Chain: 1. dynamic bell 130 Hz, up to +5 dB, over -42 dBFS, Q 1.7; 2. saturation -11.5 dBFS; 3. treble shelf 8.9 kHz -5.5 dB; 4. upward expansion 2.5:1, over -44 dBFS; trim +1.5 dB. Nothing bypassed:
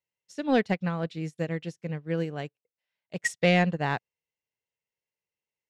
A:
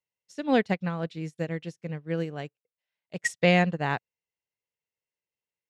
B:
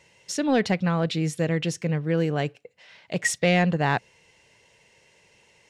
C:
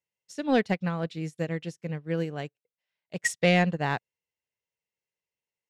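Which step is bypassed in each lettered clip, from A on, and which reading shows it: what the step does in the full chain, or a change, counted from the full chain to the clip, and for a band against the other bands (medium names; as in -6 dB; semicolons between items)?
2, distortion -23 dB; 4, 8 kHz band +6.5 dB; 3, 8 kHz band +3.5 dB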